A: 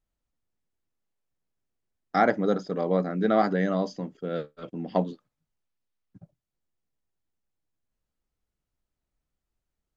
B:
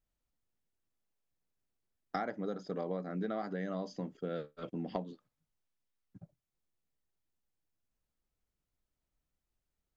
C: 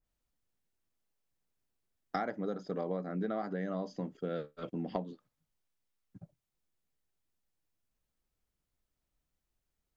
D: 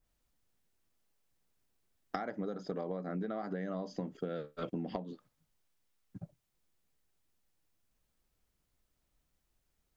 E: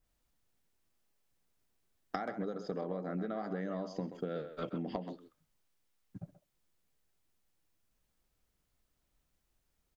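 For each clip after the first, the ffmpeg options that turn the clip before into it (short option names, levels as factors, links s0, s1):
-af "acompressor=threshold=0.0316:ratio=12,volume=0.708"
-af "adynamicequalizer=threshold=0.002:dfrequency=2100:dqfactor=0.7:tfrequency=2100:tqfactor=0.7:attack=5:release=100:ratio=0.375:range=2.5:mode=cutabove:tftype=highshelf,volume=1.19"
-af "acompressor=threshold=0.0112:ratio=12,volume=1.88"
-filter_complex "[0:a]asplit=2[s0][s1];[s1]adelay=130,highpass=300,lowpass=3400,asoftclip=type=hard:threshold=0.0562,volume=0.355[s2];[s0][s2]amix=inputs=2:normalize=0"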